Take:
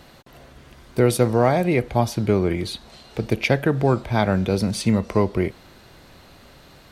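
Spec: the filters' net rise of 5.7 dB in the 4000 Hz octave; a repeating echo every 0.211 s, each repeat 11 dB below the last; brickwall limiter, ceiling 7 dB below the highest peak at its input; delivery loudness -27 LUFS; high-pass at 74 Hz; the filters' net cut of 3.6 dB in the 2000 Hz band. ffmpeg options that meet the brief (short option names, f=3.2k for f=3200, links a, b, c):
-af "highpass=74,equalizer=f=2k:t=o:g=-7,equalizer=f=4k:t=o:g=8.5,alimiter=limit=-11.5dB:level=0:latency=1,aecho=1:1:211|422|633:0.282|0.0789|0.0221,volume=-3.5dB"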